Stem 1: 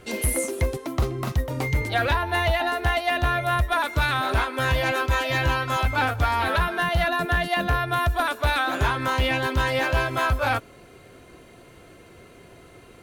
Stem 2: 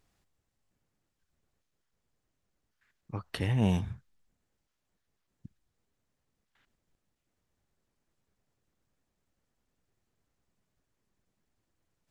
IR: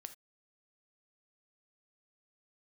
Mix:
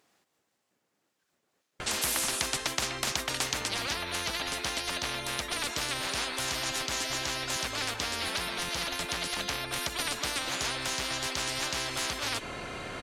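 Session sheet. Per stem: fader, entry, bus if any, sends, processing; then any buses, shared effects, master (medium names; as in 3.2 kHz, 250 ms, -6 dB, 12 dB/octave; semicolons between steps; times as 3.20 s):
+2.0 dB, 1.80 s, no send, low-pass 7.5 kHz 12 dB/octave
-9.0 dB, 0.00 s, send -6.5 dB, high-pass 290 Hz 12 dB/octave; compressor with a negative ratio -37 dBFS; random flutter of the level, depth 50%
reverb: on, pre-delay 3 ms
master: treble shelf 8.4 kHz -3.5 dB; gain riding; spectrum-flattening compressor 10:1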